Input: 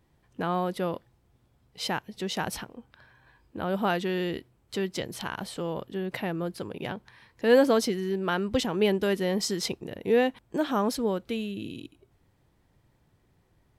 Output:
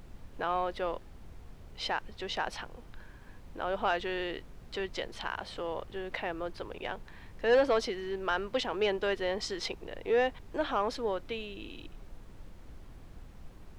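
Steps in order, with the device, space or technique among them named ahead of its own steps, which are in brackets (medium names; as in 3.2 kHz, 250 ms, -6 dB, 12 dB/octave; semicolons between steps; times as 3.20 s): aircraft cabin announcement (band-pass 480–3900 Hz; saturation -17 dBFS, distortion -19 dB; brown noise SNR 12 dB)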